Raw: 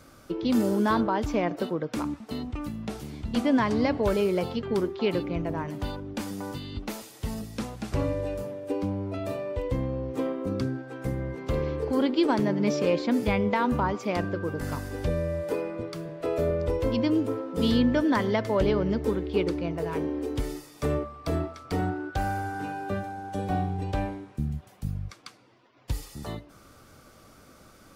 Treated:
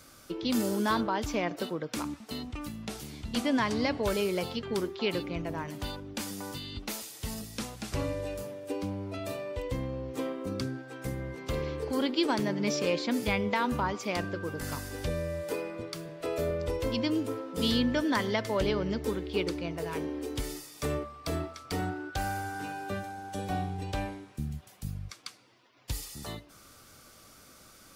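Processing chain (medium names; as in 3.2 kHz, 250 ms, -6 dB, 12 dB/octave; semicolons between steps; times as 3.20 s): treble shelf 2 kHz +11 dB; trim -5.5 dB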